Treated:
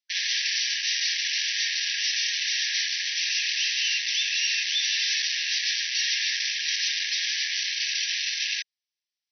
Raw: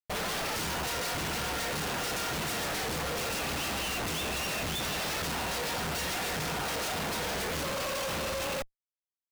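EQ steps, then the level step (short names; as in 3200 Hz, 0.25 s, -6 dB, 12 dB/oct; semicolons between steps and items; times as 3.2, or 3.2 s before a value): brick-wall FIR band-pass 1600–6100 Hz; tilt +4 dB/oct; +4.0 dB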